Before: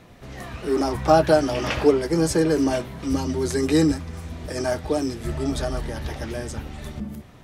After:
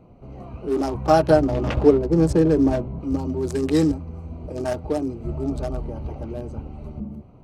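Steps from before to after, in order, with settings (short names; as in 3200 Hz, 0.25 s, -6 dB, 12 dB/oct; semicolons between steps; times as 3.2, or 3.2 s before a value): Wiener smoothing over 25 samples; 1.3–3.01 tilt -2 dB/oct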